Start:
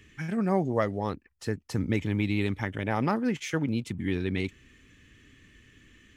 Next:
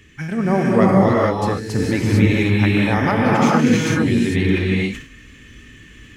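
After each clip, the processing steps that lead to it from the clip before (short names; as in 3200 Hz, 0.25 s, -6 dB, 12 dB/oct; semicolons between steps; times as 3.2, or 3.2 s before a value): non-linear reverb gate 0.48 s rising, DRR -5.5 dB; sustainer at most 110 dB/s; gain +6.5 dB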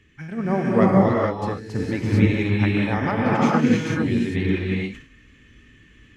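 high shelf 6500 Hz -12 dB; upward expander 1.5:1, over -23 dBFS; gain -1.5 dB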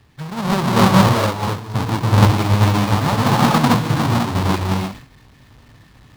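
half-waves squared off; ten-band EQ 125 Hz +10 dB, 1000 Hz +11 dB, 4000 Hz +6 dB; gain -5.5 dB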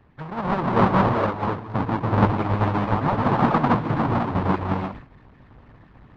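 LPF 1600 Hz 12 dB/oct; harmonic-percussive split harmonic -11 dB; in parallel at -1 dB: compressor, threshold -27 dBFS, peak gain reduction 14 dB; on the sum: gain -1.5 dB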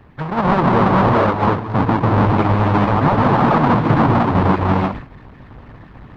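maximiser +15 dB; gain -5 dB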